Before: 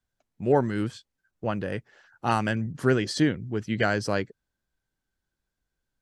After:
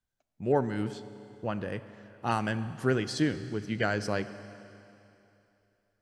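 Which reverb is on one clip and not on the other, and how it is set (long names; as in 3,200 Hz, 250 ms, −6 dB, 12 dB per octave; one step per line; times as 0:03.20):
four-comb reverb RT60 2.9 s, combs from 30 ms, DRR 12.5 dB
level −4.5 dB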